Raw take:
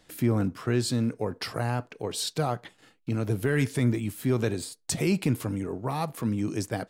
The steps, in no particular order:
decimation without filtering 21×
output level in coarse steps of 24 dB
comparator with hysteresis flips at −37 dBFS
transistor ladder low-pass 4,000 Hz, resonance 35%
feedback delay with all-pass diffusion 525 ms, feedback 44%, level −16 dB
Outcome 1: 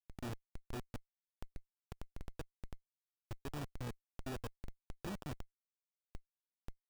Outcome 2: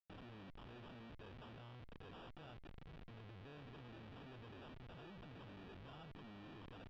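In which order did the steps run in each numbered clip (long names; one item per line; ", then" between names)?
feedback delay with all-pass diffusion, then output level in coarse steps, then comparator with hysteresis, then transistor ladder low-pass, then decimation without filtering
feedback delay with all-pass diffusion, then comparator with hysteresis, then decimation without filtering, then output level in coarse steps, then transistor ladder low-pass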